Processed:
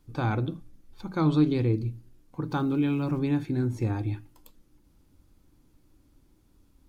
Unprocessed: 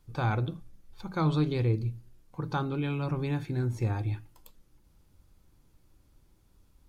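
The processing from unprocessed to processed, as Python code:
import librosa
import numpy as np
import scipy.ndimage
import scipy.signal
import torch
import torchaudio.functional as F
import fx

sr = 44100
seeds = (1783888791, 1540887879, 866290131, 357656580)

y = fx.peak_eq(x, sr, hz=280.0, db=9.5, octaves=0.61)
y = fx.sample_gate(y, sr, floor_db=-49.5, at=(2.51, 3.19))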